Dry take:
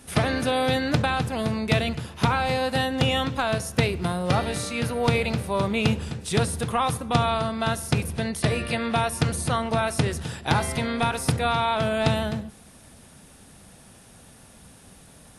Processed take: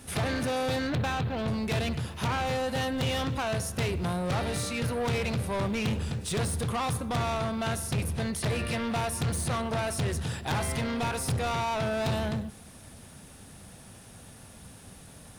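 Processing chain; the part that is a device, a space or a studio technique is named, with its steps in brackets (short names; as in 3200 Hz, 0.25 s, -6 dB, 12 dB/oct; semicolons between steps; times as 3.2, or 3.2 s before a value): 0.87–1.48 elliptic low-pass 4100 Hz; open-reel tape (soft clip -26.5 dBFS, distortion -7 dB; bell 100 Hz +4.5 dB 0.82 oct; white noise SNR 41 dB)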